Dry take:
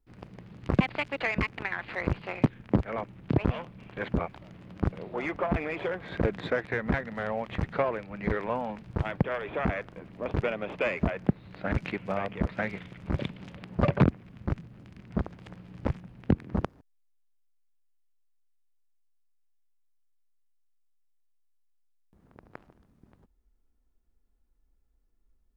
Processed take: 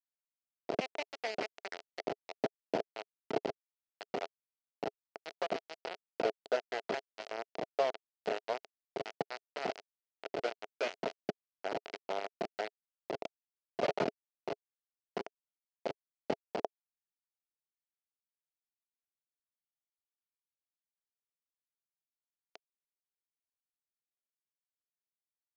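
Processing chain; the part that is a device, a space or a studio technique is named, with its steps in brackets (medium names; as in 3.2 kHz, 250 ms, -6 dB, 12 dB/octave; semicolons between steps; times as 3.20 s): hand-held game console (bit crusher 4-bit; cabinet simulation 410–4600 Hz, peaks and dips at 420 Hz +7 dB, 670 Hz +9 dB, 1.1 kHz -7 dB, 1.7 kHz -5 dB, 2.4 kHz -3 dB, 3.6 kHz -7 dB); trim -7 dB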